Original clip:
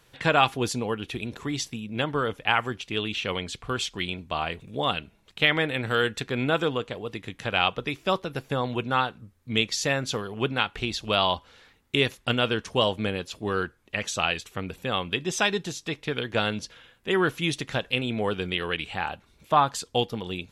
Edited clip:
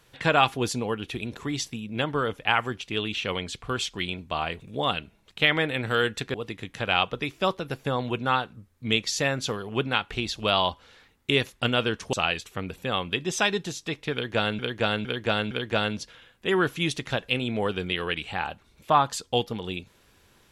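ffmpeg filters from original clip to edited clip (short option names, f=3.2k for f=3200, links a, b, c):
-filter_complex "[0:a]asplit=6[a][b][c][d][e][f];[a]atrim=end=6.342[g];[b]atrim=start=6.988:end=12.782[h];[c]atrim=start=14.128:end=16.592[i];[d]atrim=start=16.128:end=16.592[j];[e]atrim=start=16.128:end=16.592[k];[f]atrim=start=16.128[l];[g][h]acrossfade=d=0.004:c1=hsin:c2=hsin[m];[m][i]acrossfade=d=0.004:c1=hsin:c2=hsin[n];[n][j]acrossfade=d=0.004:c1=hsin:c2=hsin[o];[o][k]acrossfade=d=0.004:c1=hsin:c2=hsin[p];[p][l]acrossfade=d=0.004:c1=hsin:c2=hsin"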